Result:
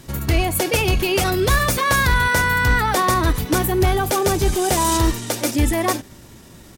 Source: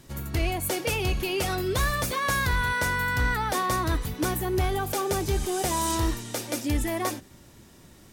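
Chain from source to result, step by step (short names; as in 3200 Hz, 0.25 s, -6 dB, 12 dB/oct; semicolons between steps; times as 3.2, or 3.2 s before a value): tempo 1.2×; gain +8.5 dB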